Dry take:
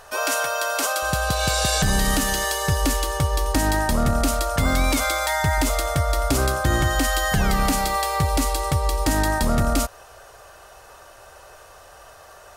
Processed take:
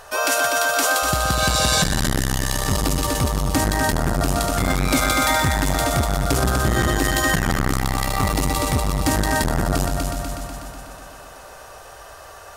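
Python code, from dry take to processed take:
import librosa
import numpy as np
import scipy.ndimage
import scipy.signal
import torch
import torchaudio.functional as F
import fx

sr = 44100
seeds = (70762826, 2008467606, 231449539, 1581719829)

p1 = x + fx.echo_heads(x, sr, ms=123, heads='first and second', feedback_pct=62, wet_db=-8, dry=0)
p2 = fx.transformer_sat(p1, sr, knee_hz=340.0)
y = F.gain(torch.from_numpy(p2), 3.0).numpy()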